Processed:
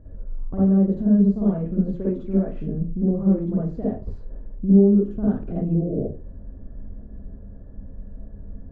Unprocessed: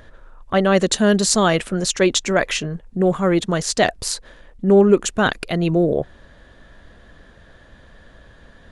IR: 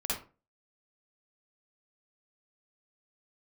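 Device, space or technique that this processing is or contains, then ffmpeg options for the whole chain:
television next door: -filter_complex "[0:a]acompressor=threshold=0.0708:ratio=5,lowpass=290[s0];[1:a]atrim=start_sample=2205[s1];[s0][s1]afir=irnorm=-1:irlink=0,volume=1.33"

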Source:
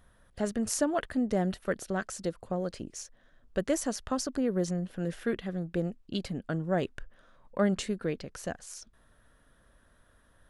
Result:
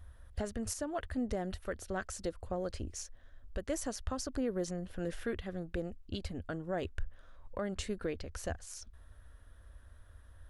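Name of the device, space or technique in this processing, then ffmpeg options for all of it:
car stereo with a boomy subwoofer: -af "lowshelf=f=110:t=q:w=3:g=10,alimiter=limit=0.0631:level=0:latency=1:release=371,volume=0.841"

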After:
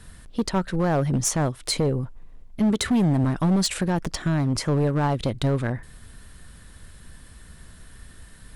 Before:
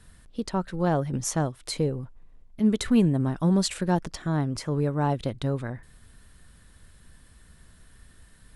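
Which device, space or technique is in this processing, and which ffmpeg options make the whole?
limiter into clipper: -filter_complex "[0:a]asettb=1/sr,asplit=3[s0][s1][s2];[s0]atrim=end=2.714[s3];[s1]atrim=start=2.71:end=3.24,asetpts=PTS-STARTPTS,afade=t=in:d=0.004:c=qsin,afade=t=out:st=0.526:d=0.004:c=qsin,highpass=59[s4];[s2]atrim=start=3.236[s5];[s3][s4]acrossfade=d=0.004:c1=hsin:c2=qsin[s6];[s6][s5]acrossfade=d=0.004:c1=qsin:c2=hsin,alimiter=limit=0.119:level=0:latency=1:release=118,asoftclip=type=hard:threshold=0.0631,volume=2.37"

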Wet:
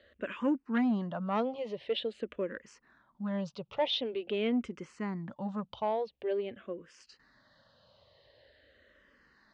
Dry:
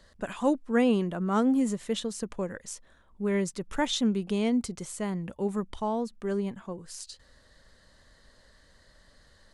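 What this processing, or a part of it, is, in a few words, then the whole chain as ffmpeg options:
barber-pole phaser into a guitar amplifier: -filter_complex "[0:a]asplit=2[s0][s1];[s1]afreqshift=-0.46[s2];[s0][s2]amix=inputs=2:normalize=1,asoftclip=type=tanh:threshold=0.0841,highpass=100,equalizer=f=180:t=q:w=4:g=-5,equalizer=f=570:t=q:w=4:g=5,equalizer=f=2800:t=q:w=4:g=5,lowpass=f=4200:w=0.5412,lowpass=f=4200:w=1.3066"

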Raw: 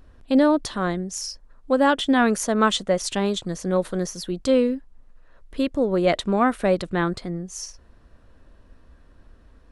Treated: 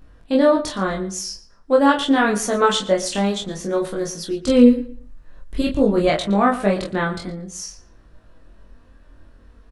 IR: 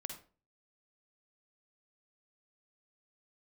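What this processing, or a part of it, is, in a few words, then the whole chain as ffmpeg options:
double-tracked vocal: -filter_complex "[0:a]asplit=2[s0][s1];[s1]adelay=25,volume=0.668[s2];[s0][s2]amix=inputs=2:normalize=0,flanger=delay=18.5:depth=3.2:speed=0.49,asettb=1/sr,asplit=3[s3][s4][s5];[s3]atrim=end=4.484[s6];[s4]atrim=start=4.48:end=6.1,asetpts=PTS-STARTPTS,afade=t=in:d=0.004:c=qsin,afade=t=out:st=1.616:d=0.004:c=qsin,bass=f=250:g=11,treble=f=4000:g=5[s7];[s5]atrim=start=6.096[s8];[s6][s7]acrossfade=d=0.004:c1=hsin:c2=qsin[s9];[s9][s8]acrossfade=d=0.004:c1=qsin:c2=hsin,asplit=2[s10][s11];[s11]adelay=116,lowpass=f=4600:p=1,volume=0.178,asplit=2[s12][s13];[s13]adelay=116,lowpass=f=4600:p=1,volume=0.24,asplit=2[s14][s15];[s15]adelay=116,lowpass=f=4600:p=1,volume=0.24[s16];[s10][s12][s14][s16]amix=inputs=4:normalize=0,volume=1.58"

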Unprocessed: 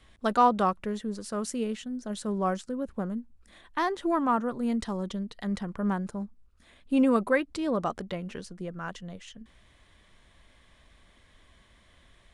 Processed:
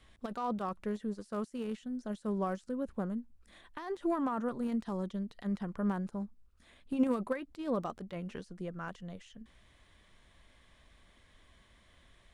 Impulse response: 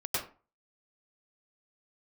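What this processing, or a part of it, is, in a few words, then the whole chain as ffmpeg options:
de-esser from a sidechain: -filter_complex "[0:a]asplit=2[s0][s1];[s1]highpass=5900,apad=whole_len=544068[s2];[s0][s2]sidechaincompress=threshold=0.00141:ratio=16:attack=1.4:release=32,volume=0.668"

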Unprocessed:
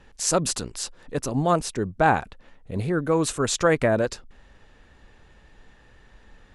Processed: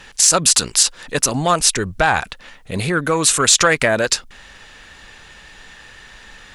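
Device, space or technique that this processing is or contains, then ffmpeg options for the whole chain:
mastering chain: -filter_complex "[0:a]equalizer=f=170:t=o:w=0.77:g=3,acompressor=threshold=0.0794:ratio=3,asoftclip=type=tanh:threshold=0.224,tiltshelf=f=970:g=-9,alimiter=level_in=4.73:limit=0.891:release=50:level=0:latency=1,asettb=1/sr,asplit=3[s0][s1][s2];[s0]atrim=end=1.344[s3];[s1]atrim=start=1.34:end=2.21,asetpts=PTS-STARTPTS,afade=t=in:d=0.004:c=qsin,afade=t=out:st=0.866:d=0.004:c=qsin,asubboost=boost=12:cutoff=96[s4];[s2]atrim=start=2.206[s5];[s3][s4]acrossfade=d=0.004:c1=hsin:c2=qsin[s6];[s6][s5]acrossfade=d=0.004:c1=qsin:c2=hsin,volume=0.891"

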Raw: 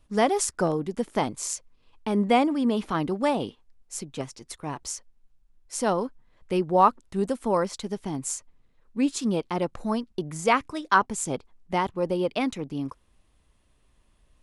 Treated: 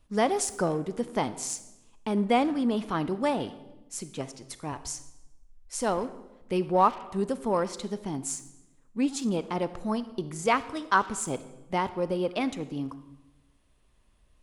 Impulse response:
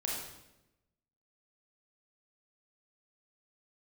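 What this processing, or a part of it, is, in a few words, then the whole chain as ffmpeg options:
saturated reverb return: -filter_complex "[0:a]asplit=2[s0][s1];[1:a]atrim=start_sample=2205[s2];[s1][s2]afir=irnorm=-1:irlink=0,asoftclip=type=tanh:threshold=0.0794,volume=0.251[s3];[s0][s3]amix=inputs=2:normalize=0,asettb=1/sr,asplit=3[s4][s5][s6];[s4]atrim=end=4.724[s7];[s5]atrim=start=4.72:end=6.04,asetpts=PTS-STARTPTS,afade=t=in:d=0.004:c=qsin,afade=t=out:st=1.316:d=0.004:c=qsin,lowshelf=f=110:t=q:w=1.5:g=8[s8];[s6]atrim=start=6.036[s9];[s7][s8]acrossfade=d=0.004:c1=hsin:c2=qsin[s10];[s10][s9]acrossfade=d=0.004:c1=qsin:c2=hsin,volume=0.668"

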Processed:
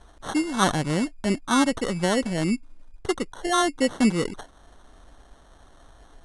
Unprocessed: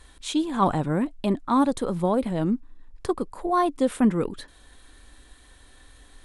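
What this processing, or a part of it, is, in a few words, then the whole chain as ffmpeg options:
crushed at another speed: -af "asetrate=88200,aresample=44100,acrusher=samples=9:mix=1:aa=0.000001,asetrate=22050,aresample=44100"

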